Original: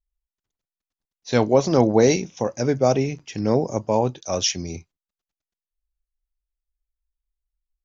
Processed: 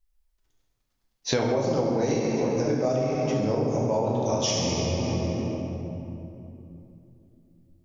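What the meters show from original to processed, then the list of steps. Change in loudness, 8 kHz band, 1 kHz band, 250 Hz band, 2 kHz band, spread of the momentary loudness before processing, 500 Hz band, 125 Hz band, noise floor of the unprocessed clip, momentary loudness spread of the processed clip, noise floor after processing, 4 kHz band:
−5.0 dB, can't be measured, −4.5 dB, −3.0 dB, −4.0 dB, 11 LU, −4.0 dB, −1.5 dB, below −85 dBFS, 13 LU, −74 dBFS, −2.0 dB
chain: delay with a high-pass on its return 69 ms, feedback 72%, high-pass 3,900 Hz, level −7 dB
rectangular room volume 120 cubic metres, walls hard, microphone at 0.64 metres
downward compressor 10 to 1, threshold −28 dBFS, peak gain reduction 21.5 dB
level +6 dB

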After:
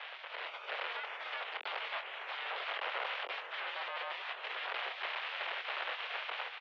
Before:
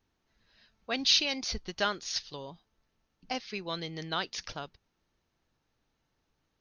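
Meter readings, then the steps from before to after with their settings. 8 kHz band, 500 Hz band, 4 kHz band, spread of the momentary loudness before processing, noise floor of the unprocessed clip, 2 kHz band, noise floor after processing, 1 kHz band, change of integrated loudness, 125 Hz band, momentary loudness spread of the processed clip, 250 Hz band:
below −30 dB, −5.5 dB, −8.5 dB, 19 LU, −79 dBFS, +2.5 dB, −48 dBFS, +0.5 dB, −7.5 dB, below −40 dB, 3 LU, below −25 dB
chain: sign of each sample alone
gate on every frequency bin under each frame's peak −15 dB weak
automatic gain control gain up to 7 dB
double-tracking delay 25 ms −9.5 dB
single-sideband voice off tune +110 Hz 360–3,100 Hz

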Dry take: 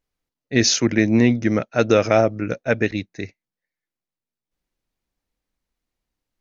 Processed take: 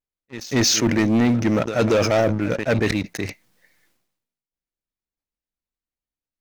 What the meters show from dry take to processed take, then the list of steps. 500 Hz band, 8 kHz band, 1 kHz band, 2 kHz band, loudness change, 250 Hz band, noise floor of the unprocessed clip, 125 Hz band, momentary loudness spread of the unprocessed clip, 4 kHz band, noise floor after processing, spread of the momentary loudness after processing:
−1.5 dB, can't be measured, −1.0 dB, −1.5 dB, −0.5 dB, −0.5 dB, below −85 dBFS, +0.5 dB, 13 LU, +0.5 dB, below −85 dBFS, 12 LU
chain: echo ahead of the sound 230 ms −21 dB
leveller curve on the samples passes 3
level that may fall only so fast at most 60 dB per second
level −8.5 dB

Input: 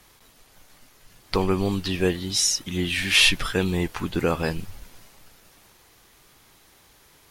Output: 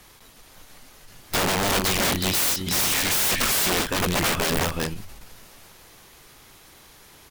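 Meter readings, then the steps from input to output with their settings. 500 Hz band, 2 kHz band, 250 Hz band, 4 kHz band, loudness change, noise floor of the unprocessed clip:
−1.5 dB, +0.5 dB, −2.5 dB, −0.5 dB, +1.0 dB, −56 dBFS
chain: single-tap delay 367 ms −5.5 dB
wrap-around overflow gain 21.5 dB
every ending faded ahead of time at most 150 dB per second
level +4.5 dB

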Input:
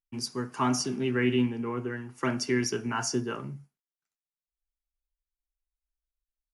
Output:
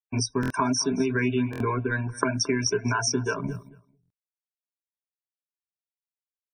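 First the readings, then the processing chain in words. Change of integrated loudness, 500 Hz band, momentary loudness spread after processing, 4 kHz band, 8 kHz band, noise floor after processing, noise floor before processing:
+3.5 dB, +3.0 dB, 5 LU, +5.0 dB, +5.5 dB, below −85 dBFS, below −85 dBFS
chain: mu-law and A-law mismatch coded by A
camcorder AGC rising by 35 dB per second
reverb reduction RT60 0.51 s
EQ curve with evenly spaced ripples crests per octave 1.6, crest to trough 14 dB
downward compressor 4 to 1, threshold −28 dBFS, peak gain reduction 7.5 dB
spectral peaks only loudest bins 64
on a send: repeating echo 222 ms, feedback 16%, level −19 dB
on the sum: buffer that repeats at 0:00.41/0:01.51/0:04.01, samples 1,024, times 3
level +6.5 dB

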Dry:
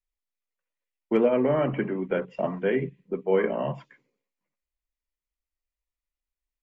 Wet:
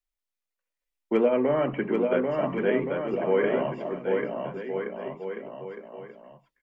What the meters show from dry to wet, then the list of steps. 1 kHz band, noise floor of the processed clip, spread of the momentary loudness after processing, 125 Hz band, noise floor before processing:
+2.0 dB, below −85 dBFS, 16 LU, −2.5 dB, below −85 dBFS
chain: parametric band 87 Hz −9.5 dB 1.5 octaves
on a send: bouncing-ball delay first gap 790 ms, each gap 0.8×, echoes 5

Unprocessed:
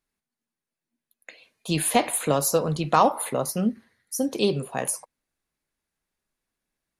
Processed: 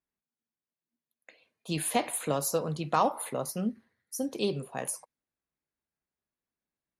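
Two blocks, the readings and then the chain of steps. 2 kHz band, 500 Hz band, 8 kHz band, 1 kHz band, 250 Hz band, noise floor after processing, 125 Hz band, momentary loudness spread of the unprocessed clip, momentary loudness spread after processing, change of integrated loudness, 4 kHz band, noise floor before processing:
−7.0 dB, −7.0 dB, −7.0 dB, −7.0 dB, −7.0 dB, below −85 dBFS, −7.0 dB, 10 LU, 10 LU, −7.0 dB, −7.0 dB, below −85 dBFS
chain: high-pass filter 53 Hz
one half of a high-frequency compander decoder only
level −7 dB

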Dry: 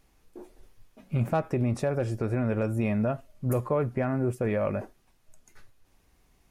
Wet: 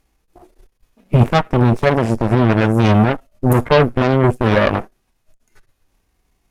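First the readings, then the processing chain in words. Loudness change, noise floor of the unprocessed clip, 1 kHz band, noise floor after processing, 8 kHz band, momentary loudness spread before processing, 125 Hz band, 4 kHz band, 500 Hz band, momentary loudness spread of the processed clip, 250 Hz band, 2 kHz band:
+13.5 dB, −65 dBFS, +16.5 dB, −67 dBFS, +10.0 dB, 4 LU, +13.5 dB, can't be measured, +12.0 dB, 5 LU, +13.0 dB, +17.5 dB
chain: harmonic and percussive parts rebalanced harmonic +9 dB
harmonic generator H 7 −15 dB, 8 −16 dB, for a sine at −8 dBFS
level +6 dB

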